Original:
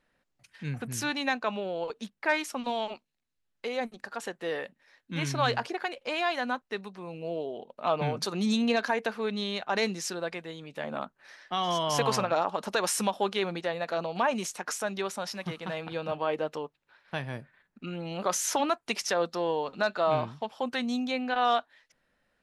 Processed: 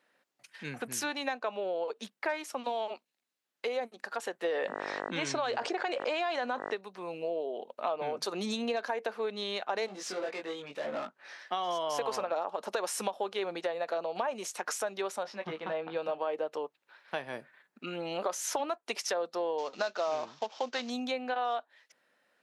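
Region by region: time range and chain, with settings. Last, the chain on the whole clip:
0:04.44–0:06.74: Chebyshev low-pass filter 8,300 Hz, order 4 + hum with harmonics 50 Hz, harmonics 39, −60 dBFS −2 dB per octave + envelope flattener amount 70%
0:09.86–0:11.39: gain into a clipping stage and back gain 35.5 dB + high-frequency loss of the air 59 metres + double-tracking delay 21 ms −2.5 dB
0:15.23–0:15.97: head-to-tape spacing loss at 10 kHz 22 dB + double-tracking delay 19 ms −8 dB
0:19.58–0:20.90: variable-slope delta modulation 32 kbit/s + high-shelf EQ 3,400 Hz +10 dB
whole clip: high-pass filter 330 Hz 12 dB per octave; dynamic equaliser 540 Hz, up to +7 dB, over −40 dBFS, Q 0.73; downward compressor 4 to 1, threshold −35 dBFS; level +3 dB

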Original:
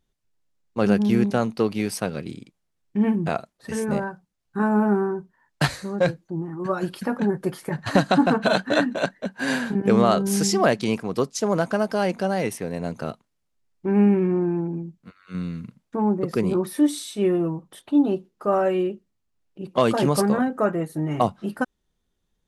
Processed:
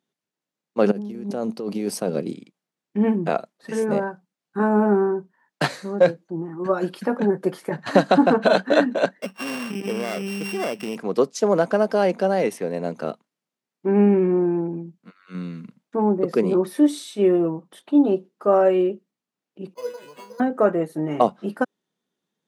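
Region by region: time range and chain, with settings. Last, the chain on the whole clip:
0:00.91–0:02.34: parametric band 2,000 Hz −9 dB 2.1 octaves + compressor whose output falls as the input rises −28 dBFS + notch filter 3,600 Hz, Q 29
0:09.22–0:10.96: samples sorted by size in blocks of 16 samples + downward compressor 5 to 1, threshold −25 dBFS
0:19.74–0:20.40: tuned comb filter 490 Hz, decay 0.27 s, mix 100% + bad sample-rate conversion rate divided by 8×, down none, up hold
whole clip: dynamic equaliser 500 Hz, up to +6 dB, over −35 dBFS, Q 1.2; high-pass filter 170 Hz 24 dB per octave; high-shelf EQ 7,500 Hz −6.5 dB

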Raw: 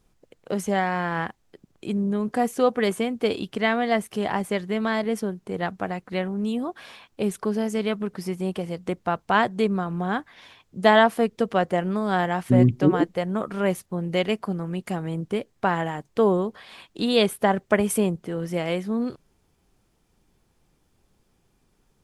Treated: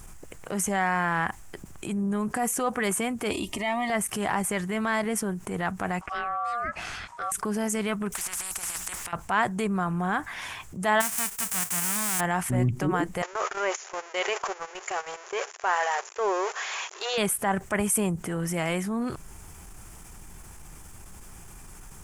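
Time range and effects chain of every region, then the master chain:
0:03.31–0:03.90: comb filter 3.2 ms, depth 81% + downward compressor 1.5 to 1, threshold −31 dBFS + Butterworth band-reject 1,500 Hz, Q 2.5
0:06.01–0:07.32: low-pass filter 6,200 Hz + downward compressor, threshold −29 dBFS + ring modulation 950 Hz
0:08.12–0:09.13: parametric band 130 Hz −12 dB 1.7 octaves + compressor whose output falls as the input rises −36 dBFS, ratio −0.5 + every bin compressed towards the loudest bin 10 to 1
0:11.00–0:12.19: spectral envelope flattened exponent 0.1 + downward compressor, threshold −28 dBFS
0:13.22–0:17.18: converter with a step at zero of −28 dBFS + linear-phase brick-wall band-pass 360–7,300 Hz + noise gate −33 dBFS, range −24 dB
whole clip: graphic EQ with 10 bands 125 Hz −4 dB, 250 Hz −8 dB, 500 Hz −10 dB, 4,000 Hz −12 dB, 8,000 Hz +7 dB; transient designer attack −7 dB, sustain 0 dB; envelope flattener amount 50%

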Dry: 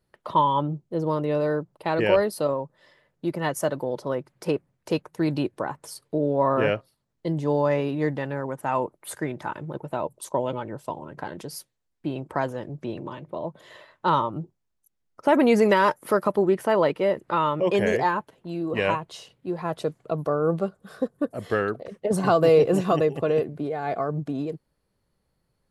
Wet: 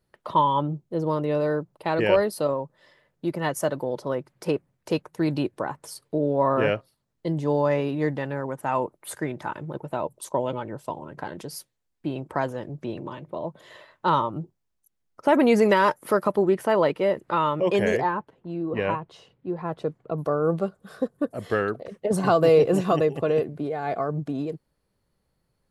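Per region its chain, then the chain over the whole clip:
0:18.01–0:20.18: low-pass filter 1,400 Hz 6 dB per octave + parametric band 630 Hz −3.5 dB 0.25 octaves
whole clip: no processing

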